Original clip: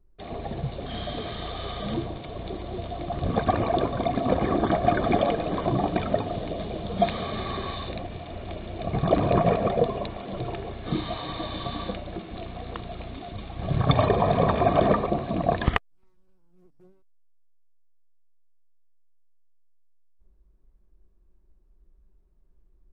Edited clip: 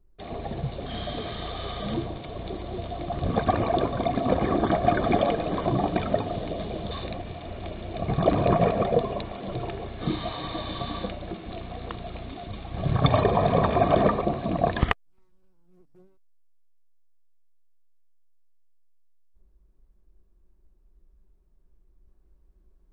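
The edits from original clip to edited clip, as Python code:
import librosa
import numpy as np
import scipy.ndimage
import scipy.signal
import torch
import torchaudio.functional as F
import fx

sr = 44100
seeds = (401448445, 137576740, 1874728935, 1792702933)

y = fx.edit(x, sr, fx.cut(start_s=6.91, length_s=0.85), tone=tone)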